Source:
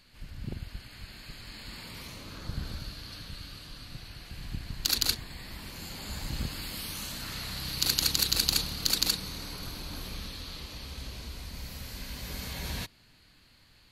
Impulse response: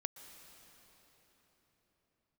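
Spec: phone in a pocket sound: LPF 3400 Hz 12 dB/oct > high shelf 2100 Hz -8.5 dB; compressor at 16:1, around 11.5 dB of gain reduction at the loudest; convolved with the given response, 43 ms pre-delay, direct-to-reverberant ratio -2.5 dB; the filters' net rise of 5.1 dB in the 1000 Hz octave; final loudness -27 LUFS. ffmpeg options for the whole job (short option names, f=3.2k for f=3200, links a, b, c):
-filter_complex "[0:a]equalizer=f=1k:t=o:g=8.5,acompressor=threshold=-32dB:ratio=16,asplit=2[a][b];[1:a]atrim=start_sample=2205,adelay=43[c];[b][c]afir=irnorm=-1:irlink=0,volume=4.5dB[d];[a][d]amix=inputs=2:normalize=0,lowpass=3.4k,highshelf=f=2.1k:g=-8.5,volume=12dB"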